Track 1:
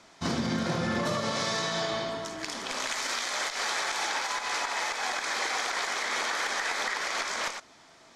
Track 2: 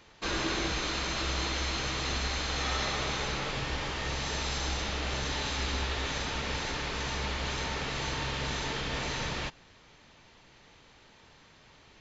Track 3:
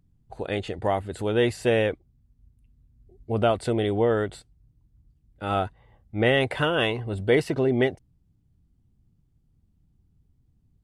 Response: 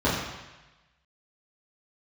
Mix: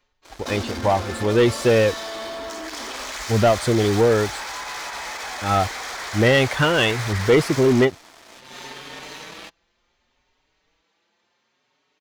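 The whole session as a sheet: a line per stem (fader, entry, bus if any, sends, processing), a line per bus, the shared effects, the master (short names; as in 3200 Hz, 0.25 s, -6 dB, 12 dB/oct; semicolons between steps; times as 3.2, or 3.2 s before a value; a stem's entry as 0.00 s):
-5.5 dB, 0.25 s, bus A, no send, steep high-pass 230 Hz 48 dB/oct; limiter -24.5 dBFS, peak gain reduction 7.5 dB; sample leveller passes 3
-4.5 dB, 0.00 s, bus A, no send, HPF 240 Hz 12 dB/oct; endless flanger 5.1 ms +0.69 Hz; auto duck -22 dB, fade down 0.45 s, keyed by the third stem
+2.0 dB, 0.00 s, no bus, no send, per-bin expansion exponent 1.5
bus A: 0.0 dB, compressor, threshold -37 dBFS, peak gain reduction 4.5 dB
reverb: off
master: sample leveller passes 2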